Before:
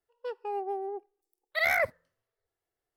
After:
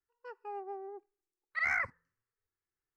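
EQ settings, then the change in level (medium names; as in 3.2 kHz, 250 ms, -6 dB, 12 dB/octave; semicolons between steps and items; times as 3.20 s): low-pass 7 kHz 24 dB/octave; dynamic bell 970 Hz, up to +6 dB, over -43 dBFS, Q 1.7; static phaser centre 1.5 kHz, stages 4; -3.5 dB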